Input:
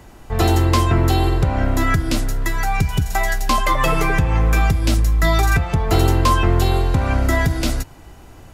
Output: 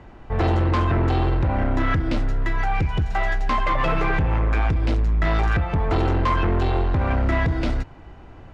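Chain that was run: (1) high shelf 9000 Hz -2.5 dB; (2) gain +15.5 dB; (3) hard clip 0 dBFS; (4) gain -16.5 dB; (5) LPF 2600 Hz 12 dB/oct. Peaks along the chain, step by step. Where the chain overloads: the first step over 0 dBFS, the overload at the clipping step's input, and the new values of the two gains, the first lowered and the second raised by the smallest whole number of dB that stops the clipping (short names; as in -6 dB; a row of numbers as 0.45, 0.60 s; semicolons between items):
-5.5, +10.0, 0.0, -16.5, -16.0 dBFS; step 2, 10.0 dB; step 2 +5.5 dB, step 4 -6.5 dB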